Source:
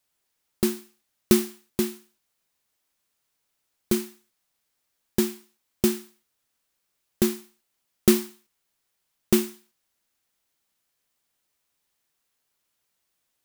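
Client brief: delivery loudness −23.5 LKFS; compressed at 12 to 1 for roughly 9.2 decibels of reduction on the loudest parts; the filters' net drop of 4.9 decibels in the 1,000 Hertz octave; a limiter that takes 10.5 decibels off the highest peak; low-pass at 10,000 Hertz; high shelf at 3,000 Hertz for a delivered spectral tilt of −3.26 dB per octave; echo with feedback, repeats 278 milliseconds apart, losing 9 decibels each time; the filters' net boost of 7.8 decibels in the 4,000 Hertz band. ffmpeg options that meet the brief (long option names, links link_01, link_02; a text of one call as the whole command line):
ffmpeg -i in.wav -af "lowpass=10000,equalizer=frequency=1000:width_type=o:gain=-8,highshelf=frequency=3000:gain=6.5,equalizer=frequency=4000:width_type=o:gain=5,acompressor=threshold=-21dB:ratio=12,alimiter=limit=-16.5dB:level=0:latency=1,aecho=1:1:278|556|834|1112:0.355|0.124|0.0435|0.0152,volume=12.5dB" out.wav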